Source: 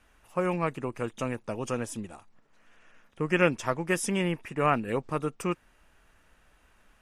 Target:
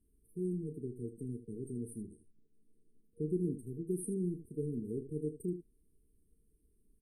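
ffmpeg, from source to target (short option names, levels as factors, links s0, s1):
-af "aecho=1:1:33|78:0.299|0.251,afftfilt=real='re*(1-between(b*sr/4096,470,8300))':imag='im*(1-between(b*sr/4096,470,8300))':win_size=4096:overlap=0.75,adynamicequalizer=threshold=0.00141:dfrequency=3400:dqfactor=0.7:tfrequency=3400:tqfactor=0.7:attack=5:release=100:ratio=0.375:range=2:mode=cutabove:tftype=highshelf,volume=0.447"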